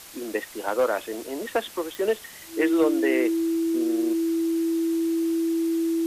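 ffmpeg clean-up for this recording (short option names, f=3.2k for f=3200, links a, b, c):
-af "adeclick=t=4,bandreject=f=330:w=30,afwtdn=0.0071"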